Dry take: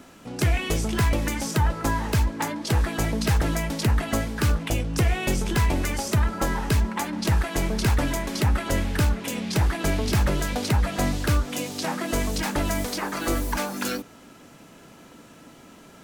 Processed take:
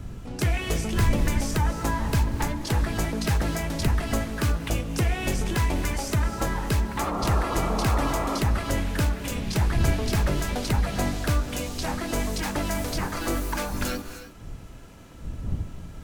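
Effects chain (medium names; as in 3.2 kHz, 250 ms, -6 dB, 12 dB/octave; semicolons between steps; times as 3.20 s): wind noise 97 Hz -31 dBFS; painted sound noise, 6.98–8.39 s, 250–1400 Hz -28 dBFS; gated-style reverb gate 340 ms rising, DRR 9.5 dB; trim -2.5 dB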